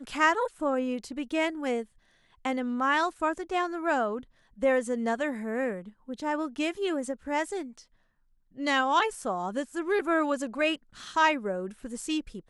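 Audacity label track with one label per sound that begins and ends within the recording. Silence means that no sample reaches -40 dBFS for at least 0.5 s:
2.450000	7.800000	sound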